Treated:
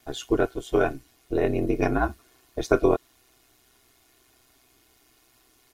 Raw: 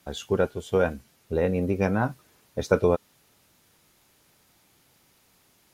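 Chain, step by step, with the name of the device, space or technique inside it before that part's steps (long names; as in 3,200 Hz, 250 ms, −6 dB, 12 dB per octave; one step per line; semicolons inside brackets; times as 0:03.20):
ring-modulated robot voice (ring modulation 63 Hz; comb filter 2.8 ms, depth 69%)
level +2.5 dB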